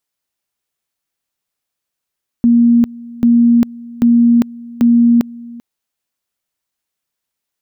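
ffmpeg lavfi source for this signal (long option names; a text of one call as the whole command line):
ffmpeg -f lavfi -i "aevalsrc='pow(10,(-6-22*gte(mod(t,0.79),0.4))/20)*sin(2*PI*236*t)':duration=3.16:sample_rate=44100" out.wav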